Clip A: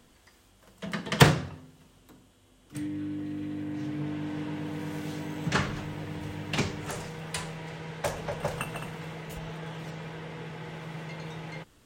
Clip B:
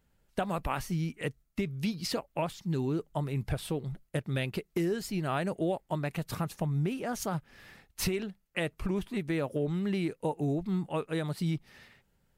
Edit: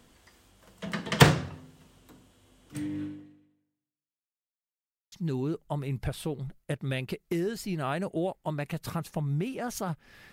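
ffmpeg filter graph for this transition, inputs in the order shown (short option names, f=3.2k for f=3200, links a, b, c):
-filter_complex "[0:a]apad=whole_dur=10.32,atrim=end=10.32,asplit=2[a][b];[a]atrim=end=4.43,asetpts=PTS-STARTPTS,afade=t=out:st=3.03:d=1.4:c=exp[c];[b]atrim=start=4.43:end=5.12,asetpts=PTS-STARTPTS,volume=0[d];[1:a]atrim=start=2.57:end=7.77,asetpts=PTS-STARTPTS,afade=t=in:d=0.004:c=hsin[e];[c][d][e]concat=n=3:v=0:a=1"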